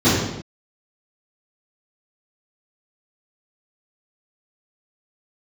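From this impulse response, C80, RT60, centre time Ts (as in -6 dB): 2.5 dB, not exponential, 77 ms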